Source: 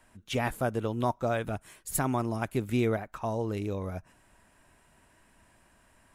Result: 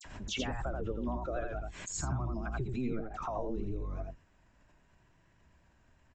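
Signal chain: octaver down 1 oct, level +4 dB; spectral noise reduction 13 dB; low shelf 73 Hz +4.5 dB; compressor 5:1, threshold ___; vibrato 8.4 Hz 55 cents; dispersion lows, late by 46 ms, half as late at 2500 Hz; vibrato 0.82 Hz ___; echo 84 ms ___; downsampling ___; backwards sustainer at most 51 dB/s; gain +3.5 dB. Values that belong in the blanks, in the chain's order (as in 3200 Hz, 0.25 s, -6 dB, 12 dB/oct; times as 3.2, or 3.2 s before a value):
-39 dBFS, 22 cents, -3.5 dB, 16000 Hz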